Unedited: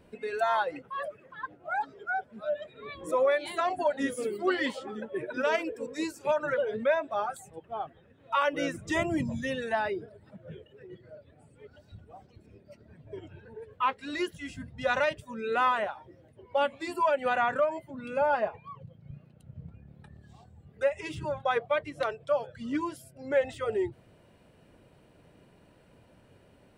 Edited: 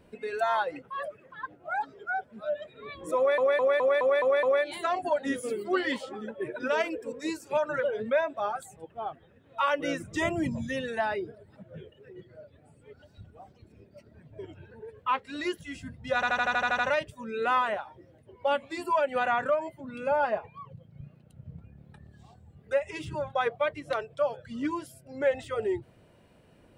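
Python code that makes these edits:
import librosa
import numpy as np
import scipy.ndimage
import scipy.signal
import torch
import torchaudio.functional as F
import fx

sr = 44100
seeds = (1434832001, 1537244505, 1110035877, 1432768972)

y = fx.edit(x, sr, fx.stutter(start_s=3.17, slice_s=0.21, count=7),
    fx.stutter(start_s=14.89, slice_s=0.08, count=9), tone=tone)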